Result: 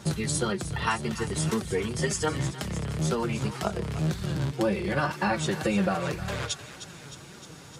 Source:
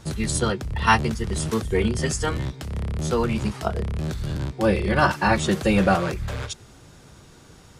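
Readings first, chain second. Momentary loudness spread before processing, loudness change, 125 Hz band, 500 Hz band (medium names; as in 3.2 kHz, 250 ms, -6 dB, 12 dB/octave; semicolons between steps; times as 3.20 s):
11 LU, -5.0 dB, -4.0 dB, -5.0 dB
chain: compression, threshold -27 dBFS, peak gain reduction 14.5 dB; high-pass 88 Hz; on a send: thinning echo 308 ms, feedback 70%, high-pass 1.1 kHz, level -11 dB; on the sum: flange 1.9 Hz, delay 4.8 ms, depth 2.6 ms, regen +39%; trim +7 dB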